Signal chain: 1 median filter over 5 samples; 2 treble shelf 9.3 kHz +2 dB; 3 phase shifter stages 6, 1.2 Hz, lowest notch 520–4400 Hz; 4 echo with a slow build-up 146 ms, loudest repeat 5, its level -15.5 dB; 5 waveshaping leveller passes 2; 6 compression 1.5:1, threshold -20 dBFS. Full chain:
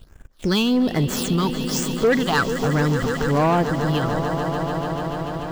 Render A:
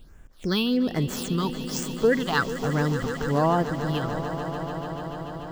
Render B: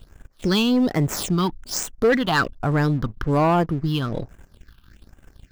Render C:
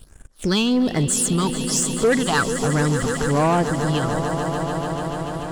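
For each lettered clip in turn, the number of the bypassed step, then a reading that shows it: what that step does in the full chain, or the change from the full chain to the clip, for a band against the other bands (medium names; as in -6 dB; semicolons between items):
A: 5, crest factor change +5.5 dB; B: 4, momentary loudness spread change +2 LU; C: 1, 8 kHz band +9.0 dB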